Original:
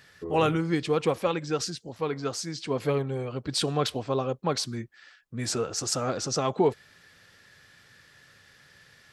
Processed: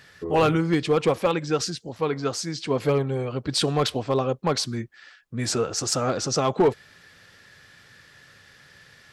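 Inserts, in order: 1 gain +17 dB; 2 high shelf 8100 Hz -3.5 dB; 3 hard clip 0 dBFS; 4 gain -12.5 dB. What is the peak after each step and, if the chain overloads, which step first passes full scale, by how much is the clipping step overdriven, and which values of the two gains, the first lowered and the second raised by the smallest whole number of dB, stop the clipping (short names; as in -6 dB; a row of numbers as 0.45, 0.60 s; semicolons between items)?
+6.0, +6.0, 0.0, -12.5 dBFS; step 1, 6.0 dB; step 1 +11 dB, step 4 -6.5 dB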